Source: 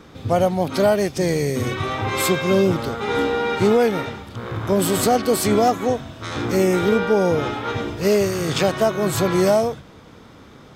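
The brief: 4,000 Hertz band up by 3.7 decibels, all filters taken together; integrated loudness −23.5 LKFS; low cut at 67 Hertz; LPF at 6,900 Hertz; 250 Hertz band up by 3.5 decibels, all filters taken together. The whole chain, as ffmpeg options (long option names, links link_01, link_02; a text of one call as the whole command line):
ffmpeg -i in.wav -af "highpass=67,lowpass=6900,equalizer=frequency=250:width_type=o:gain=5,equalizer=frequency=4000:width_type=o:gain=5,volume=-5.5dB" out.wav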